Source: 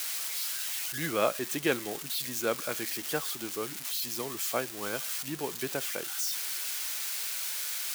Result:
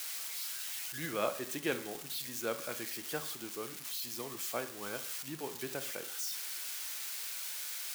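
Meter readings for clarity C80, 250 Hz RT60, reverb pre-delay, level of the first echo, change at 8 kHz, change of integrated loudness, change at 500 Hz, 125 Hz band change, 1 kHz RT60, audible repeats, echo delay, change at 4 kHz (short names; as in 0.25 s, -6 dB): 16.5 dB, 0.60 s, 27 ms, none, -6.5 dB, -6.0 dB, -6.0 dB, -6.0 dB, 0.55 s, none, none, -6.0 dB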